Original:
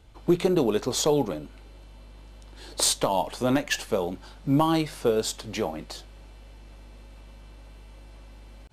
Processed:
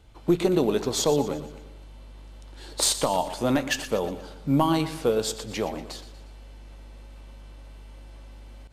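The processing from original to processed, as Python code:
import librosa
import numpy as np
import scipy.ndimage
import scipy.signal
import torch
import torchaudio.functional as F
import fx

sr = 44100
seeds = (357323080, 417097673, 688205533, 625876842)

y = fx.echo_feedback(x, sr, ms=119, feedback_pct=47, wet_db=-13.0)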